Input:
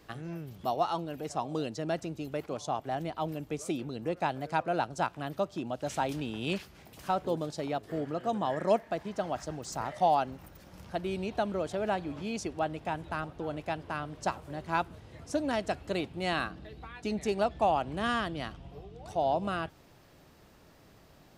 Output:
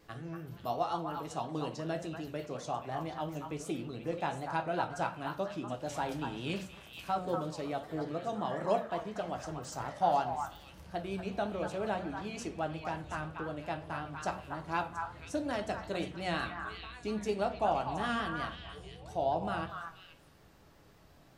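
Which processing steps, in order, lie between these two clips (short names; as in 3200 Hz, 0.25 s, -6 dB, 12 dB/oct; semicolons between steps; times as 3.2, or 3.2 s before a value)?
delay with a stepping band-pass 0.24 s, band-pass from 1200 Hz, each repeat 1.4 oct, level -2.5 dB; shoebox room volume 33 m³, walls mixed, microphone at 0.32 m; vibrato 5.5 Hz 49 cents; gain -5 dB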